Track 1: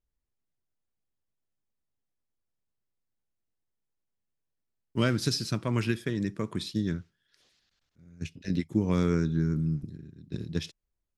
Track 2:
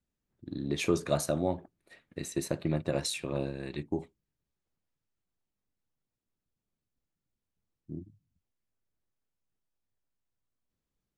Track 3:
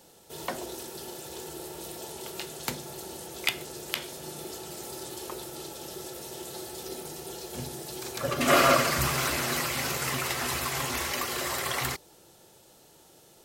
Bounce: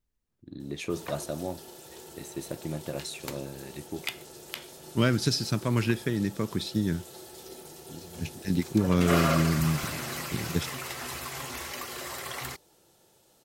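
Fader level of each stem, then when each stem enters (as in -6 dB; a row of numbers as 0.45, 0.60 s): +2.0, -4.5, -6.5 dB; 0.00, 0.00, 0.60 s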